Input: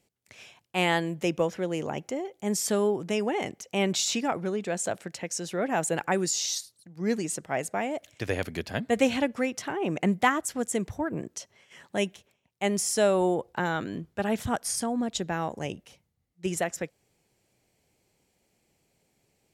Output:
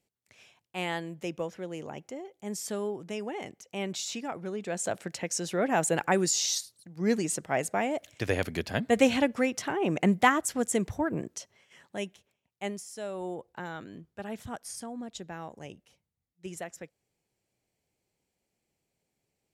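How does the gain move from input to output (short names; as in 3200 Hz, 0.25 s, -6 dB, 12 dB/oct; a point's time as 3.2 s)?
4.31 s -8 dB
5.08 s +1 dB
11.11 s +1 dB
11.97 s -7.5 dB
12.69 s -7.5 dB
12.86 s -17.5 dB
13.33 s -10.5 dB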